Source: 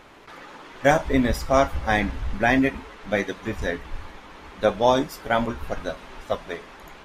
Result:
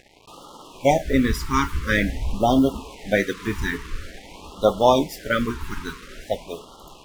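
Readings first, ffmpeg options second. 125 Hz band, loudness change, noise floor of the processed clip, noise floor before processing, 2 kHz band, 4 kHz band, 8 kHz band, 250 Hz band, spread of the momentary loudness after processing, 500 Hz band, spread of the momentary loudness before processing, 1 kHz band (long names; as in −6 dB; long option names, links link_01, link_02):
+2.5 dB, +1.5 dB, −48 dBFS, −46 dBFS, −0.5 dB, +2.5 dB, +3.0 dB, +2.5 dB, 19 LU, +1.0 dB, 22 LU, +0.5 dB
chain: -af "acrusher=bits=6:mix=0:aa=0.5,dynaudnorm=framelen=220:gausssize=11:maxgain=5.5dB,afftfilt=real='re*(1-between(b*sr/1024,590*pow(2000/590,0.5+0.5*sin(2*PI*0.48*pts/sr))/1.41,590*pow(2000/590,0.5+0.5*sin(2*PI*0.48*pts/sr))*1.41))':imag='im*(1-between(b*sr/1024,590*pow(2000/590,0.5+0.5*sin(2*PI*0.48*pts/sr))/1.41,590*pow(2000/590,0.5+0.5*sin(2*PI*0.48*pts/sr))*1.41))':win_size=1024:overlap=0.75"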